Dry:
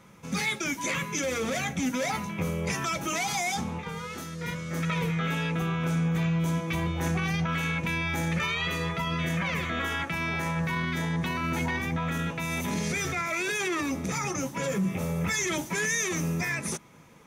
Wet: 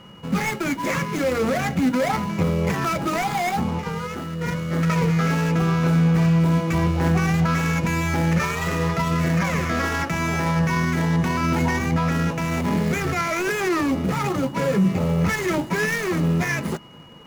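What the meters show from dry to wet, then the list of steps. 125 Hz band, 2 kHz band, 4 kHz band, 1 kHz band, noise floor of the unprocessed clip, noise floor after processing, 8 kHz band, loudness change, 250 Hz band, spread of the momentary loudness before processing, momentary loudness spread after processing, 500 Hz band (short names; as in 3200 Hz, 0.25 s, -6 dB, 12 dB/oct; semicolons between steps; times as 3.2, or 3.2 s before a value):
+9.0 dB, +4.0 dB, +1.0 dB, +7.5 dB, -41 dBFS, -33 dBFS, -1.5 dB, +7.0 dB, +9.0 dB, 4 LU, 5 LU, +8.5 dB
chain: median filter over 15 samples; whine 2900 Hz -58 dBFS; gain +9 dB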